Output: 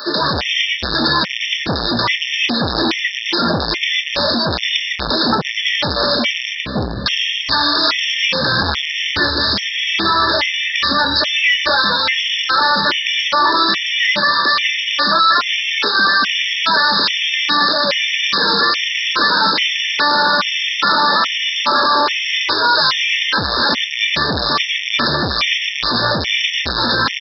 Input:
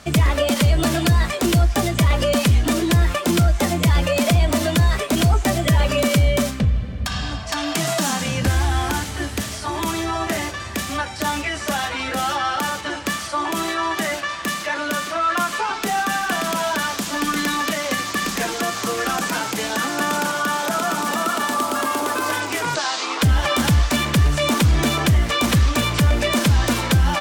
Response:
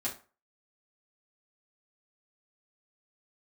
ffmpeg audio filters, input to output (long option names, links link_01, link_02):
-filter_complex "[0:a]acrossover=split=280[link_01][link_02];[link_01]adelay=150[link_03];[link_03][link_02]amix=inputs=2:normalize=0,asplit=2[link_04][link_05];[link_05]aeval=exprs='(mod(5.01*val(0)+1,2)-1)/5.01':channel_layout=same,volume=-6dB[link_06];[link_04][link_06]amix=inputs=2:normalize=0,asuperstop=centerf=730:order=12:qfactor=3.8,aresample=11025,asoftclip=type=hard:threshold=-21.5dB,aresample=44100,aemphasis=mode=production:type=riaa,asplit=2[link_07][link_08];[link_08]adelay=25,volume=-11.5dB[link_09];[link_07][link_09]amix=inputs=2:normalize=0,alimiter=level_in=16.5dB:limit=-1dB:release=50:level=0:latency=1,afftfilt=real='re*gt(sin(2*PI*1.2*pts/sr)*(1-2*mod(floor(b*sr/1024/1800),2)),0)':imag='im*gt(sin(2*PI*1.2*pts/sr)*(1-2*mod(floor(b*sr/1024/1800),2)),0)':win_size=1024:overlap=0.75,volume=-3dB"